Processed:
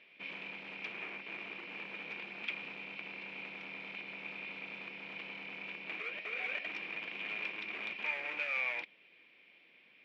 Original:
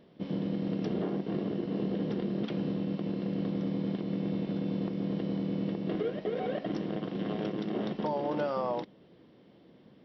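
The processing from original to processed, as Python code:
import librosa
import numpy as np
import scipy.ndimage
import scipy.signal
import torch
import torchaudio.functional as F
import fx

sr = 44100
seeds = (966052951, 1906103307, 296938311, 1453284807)

p1 = fx.rider(x, sr, range_db=10, speed_s=0.5)
p2 = x + (p1 * librosa.db_to_amplitude(2.5))
p3 = np.clip(p2, -10.0 ** (-26.0 / 20.0), 10.0 ** (-26.0 / 20.0))
p4 = fx.bandpass_q(p3, sr, hz=2400.0, q=17.0)
y = p4 * librosa.db_to_amplitude(16.5)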